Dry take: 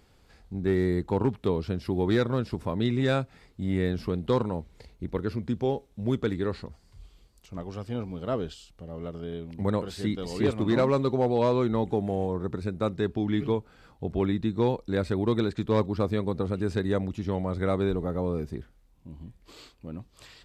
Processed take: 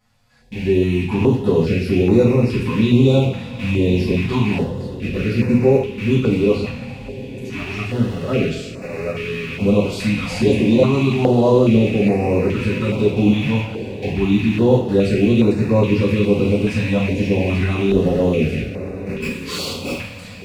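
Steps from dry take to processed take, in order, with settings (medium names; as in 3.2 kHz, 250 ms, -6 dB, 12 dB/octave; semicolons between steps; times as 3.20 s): rattle on loud lows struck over -37 dBFS, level -27 dBFS; peak limiter -20 dBFS, peak gain reduction 5.5 dB; level rider gain up to 11 dB; touch-sensitive flanger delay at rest 8.8 ms, full sweep at -13.5 dBFS; 19.20–19.93 s: overdrive pedal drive 31 dB, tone 6.3 kHz, clips at -20 dBFS; echo that smears into a reverb 1260 ms, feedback 43%, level -13.5 dB; reverberation, pre-delay 3 ms, DRR -8.5 dB; step-sequenced notch 2.4 Hz 380–3200 Hz; trim -5 dB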